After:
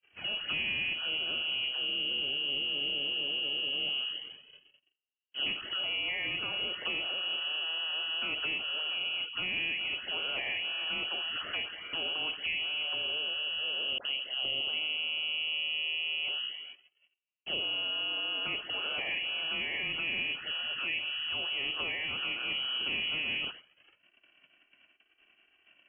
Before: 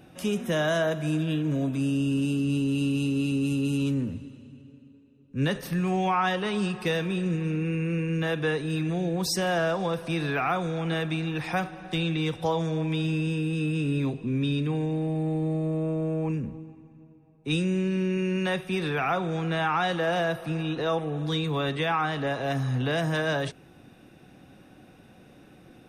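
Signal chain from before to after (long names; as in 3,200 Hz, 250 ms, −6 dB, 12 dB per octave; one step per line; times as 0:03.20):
compressor on every frequency bin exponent 0.6
noise gate −34 dBFS, range −42 dB
tuned comb filter 230 Hz, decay 0.36 s, harmonics all, mix 40%
0:13.98–0:16.25: all-pass dispersion lows, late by 69 ms, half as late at 1,300 Hz
flanger swept by the level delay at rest 2.7 ms, full sweep at −23 dBFS
voice inversion scrambler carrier 3,100 Hz
level −4.5 dB
MP3 24 kbit/s 12,000 Hz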